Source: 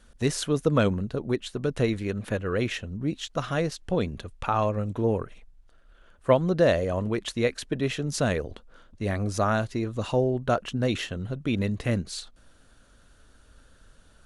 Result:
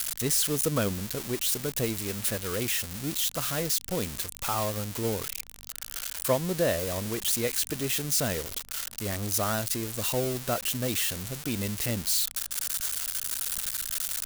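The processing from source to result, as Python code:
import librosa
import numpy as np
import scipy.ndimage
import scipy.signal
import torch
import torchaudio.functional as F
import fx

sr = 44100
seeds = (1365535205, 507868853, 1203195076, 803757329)

y = x + 0.5 * 10.0 ** (-14.0 / 20.0) * np.diff(np.sign(x), prepend=np.sign(x[:1]))
y = fx.add_hum(y, sr, base_hz=50, snr_db=29)
y = y * librosa.db_to_amplitude(-5.5)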